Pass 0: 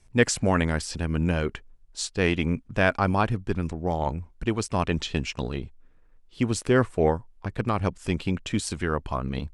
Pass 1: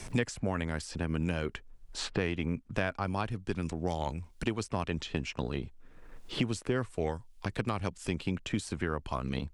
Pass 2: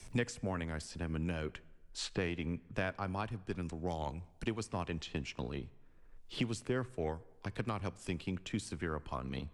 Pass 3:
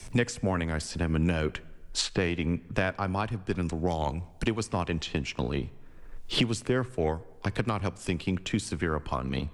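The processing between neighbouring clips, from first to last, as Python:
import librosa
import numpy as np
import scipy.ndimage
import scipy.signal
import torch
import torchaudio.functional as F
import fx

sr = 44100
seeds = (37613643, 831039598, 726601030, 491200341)

y1 = fx.band_squash(x, sr, depth_pct=100)
y1 = y1 * 10.0 ** (-8.5 / 20.0)
y2 = fx.rev_plate(y1, sr, seeds[0], rt60_s=1.8, hf_ratio=0.6, predelay_ms=0, drr_db=19.5)
y2 = fx.band_widen(y2, sr, depth_pct=40)
y2 = y2 * 10.0 ** (-5.0 / 20.0)
y3 = fx.recorder_agc(y2, sr, target_db=-24.5, rise_db_per_s=6.3, max_gain_db=30)
y3 = y3 * 10.0 ** (8.0 / 20.0)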